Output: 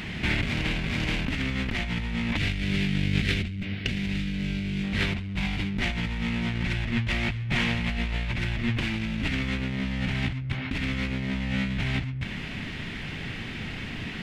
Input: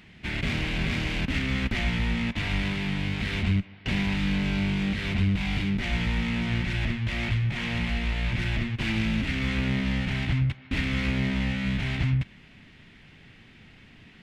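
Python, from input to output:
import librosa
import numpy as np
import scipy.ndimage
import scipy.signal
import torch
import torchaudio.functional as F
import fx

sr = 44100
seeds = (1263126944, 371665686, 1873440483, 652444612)

y = fx.peak_eq(x, sr, hz=940.0, db=-14.0, octaves=1.0, at=(2.37, 4.84))
y = fx.over_compress(y, sr, threshold_db=-36.0, ratio=-1.0)
y = y * librosa.db_to_amplitude(8.0)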